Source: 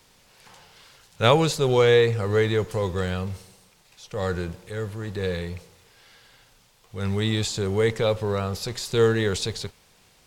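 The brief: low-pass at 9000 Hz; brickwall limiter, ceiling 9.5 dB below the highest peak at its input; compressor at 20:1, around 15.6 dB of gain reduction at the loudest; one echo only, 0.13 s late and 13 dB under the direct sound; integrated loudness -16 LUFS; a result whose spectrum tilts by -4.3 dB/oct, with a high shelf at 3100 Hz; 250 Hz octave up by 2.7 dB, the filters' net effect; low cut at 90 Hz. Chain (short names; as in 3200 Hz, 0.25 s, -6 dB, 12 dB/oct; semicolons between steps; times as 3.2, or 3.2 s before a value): HPF 90 Hz; LPF 9000 Hz; bell 250 Hz +4 dB; high shelf 3100 Hz +7 dB; compressor 20:1, threshold -27 dBFS; limiter -23 dBFS; echo 0.13 s -13 dB; gain +18.5 dB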